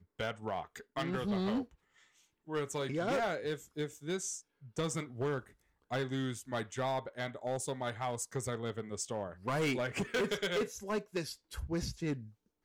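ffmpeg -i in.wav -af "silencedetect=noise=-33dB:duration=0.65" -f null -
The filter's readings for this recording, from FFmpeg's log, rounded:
silence_start: 1.62
silence_end: 2.51 | silence_duration: 0.90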